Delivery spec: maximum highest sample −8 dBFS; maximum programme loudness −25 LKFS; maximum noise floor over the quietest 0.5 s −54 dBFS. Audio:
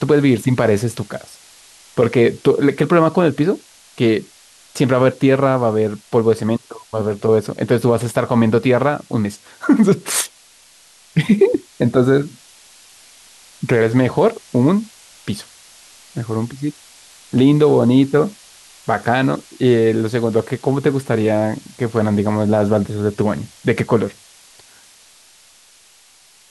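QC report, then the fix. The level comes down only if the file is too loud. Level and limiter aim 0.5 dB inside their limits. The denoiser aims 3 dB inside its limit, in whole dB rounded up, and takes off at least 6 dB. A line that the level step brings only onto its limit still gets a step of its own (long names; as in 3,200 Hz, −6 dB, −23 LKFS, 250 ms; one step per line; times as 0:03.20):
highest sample −3.0 dBFS: out of spec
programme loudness −17.0 LKFS: out of spec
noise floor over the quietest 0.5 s −50 dBFS: out of spec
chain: level −8.5 dB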